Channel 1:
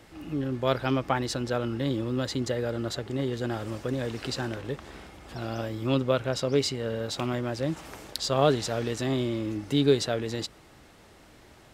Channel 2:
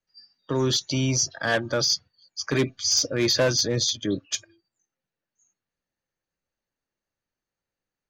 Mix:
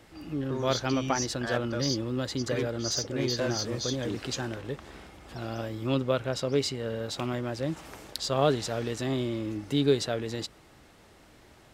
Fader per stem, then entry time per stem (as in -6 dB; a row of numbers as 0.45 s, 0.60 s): -2.0 dB, -10.0 dB; 0.00 s, 0.00 s